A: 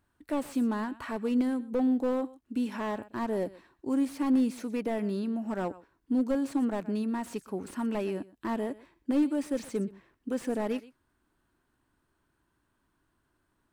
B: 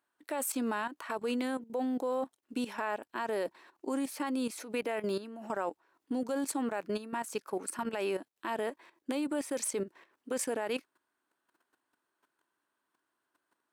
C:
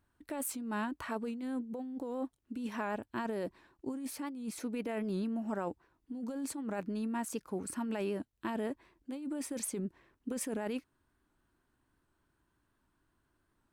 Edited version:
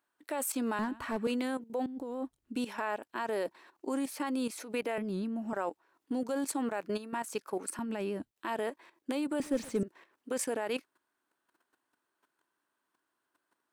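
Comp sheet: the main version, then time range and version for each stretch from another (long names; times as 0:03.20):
B
0:00.79–0:01.27: punch in from A
0:01.86–0:02.56: punch in from C
0:04.98–0:05.53: punch in from C
0:07.79–0:08.31: punch in from C
0:09.40–0:09.83: punch in from A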